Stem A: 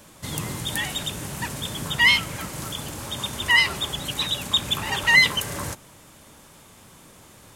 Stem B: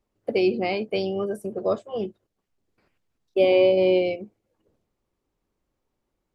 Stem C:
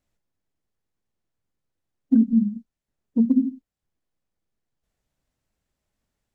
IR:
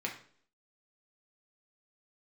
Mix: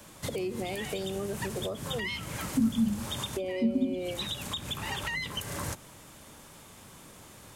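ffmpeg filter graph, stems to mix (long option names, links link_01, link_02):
-filter_complex "[0:a]volume=-1.5dB[link_01];[1:a]volume=0.5dB,asplit=2[link_02][link_03];[2:a]adelay=450,volume=-1dB[link_04];[link_03]apad=whole_len=333125[link_05];[link_01][link_05]sidechaincompress=threshold=-22dB:ratio=8:attack=25:release=182[link_06];[link_06][link_02]amix=inputs=2:normalize=0,acrossover=split=440[link_07][link_08];[link_08]acompressor=threshold=-25dB:ratio=2[link_09];[link_07][link_09]amix=inputs=2:normalize=0,alimiter=limit=-20.5dB:level=0:latency=1:release=410,volume=0dB[link_10];[link_04][link_10]amix=inputs=2:normalize=0,acrossover=split=160[link_11][link_12];[link_12]acompressor=threshold=-33dB:ratio=2.5[link_13];[link_11][link_13]amix=inputs=2:normalize=0"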